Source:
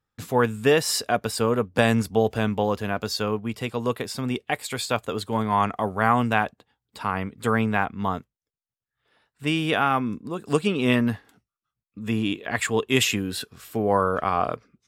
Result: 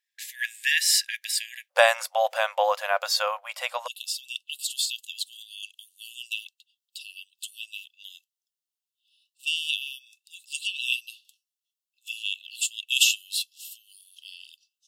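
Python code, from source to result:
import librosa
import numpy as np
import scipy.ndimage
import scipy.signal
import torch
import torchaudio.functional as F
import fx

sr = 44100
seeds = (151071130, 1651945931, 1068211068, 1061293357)

y = fx.brickwall_highpass(x, sr, low_hz=fx.steps((0.0, 1600.0), (1.69, 510.0), (3.86, 2600.0)))
y = y * 10.0 ** (4.5 / 20.0)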